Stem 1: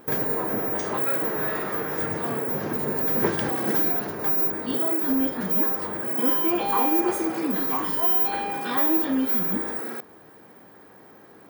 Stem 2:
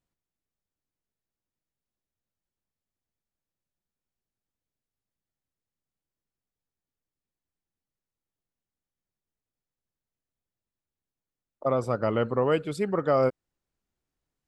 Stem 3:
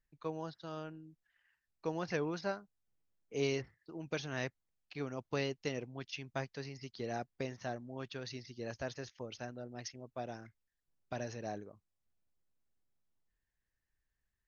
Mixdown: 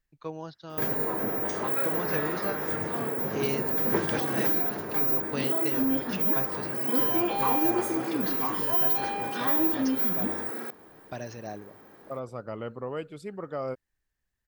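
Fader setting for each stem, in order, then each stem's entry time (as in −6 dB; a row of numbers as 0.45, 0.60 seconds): −3.0, −10.5, +3.0 decibels; 0.70, 0.45, 0.00 seconds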